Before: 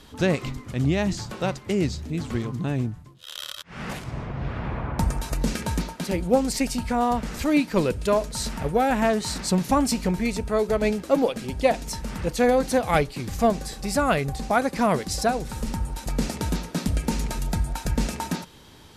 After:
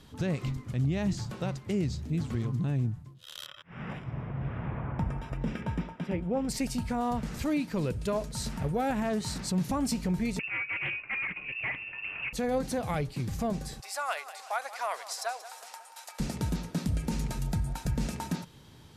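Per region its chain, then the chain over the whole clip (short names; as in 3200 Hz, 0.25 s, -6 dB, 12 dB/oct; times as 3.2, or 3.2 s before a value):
3.46–6.49 polynomial smoothing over 25 samples + low shelf 160 Hz -5 dB
10.39–12.33 hard clip -23 dBFS + inverted band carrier 2700 Hz + Doppler distortion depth 0.28 ms
13.8–16.2 inverse Chebyshev high-pass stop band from 160 Hz, stop band 70 dB + feedback echo 0.181 s, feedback 53%, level -15 dB
whole clip: bell 130 Hz +9 dB 1.3 oct; limiter -13.5 dBFS; gain -7.5 dB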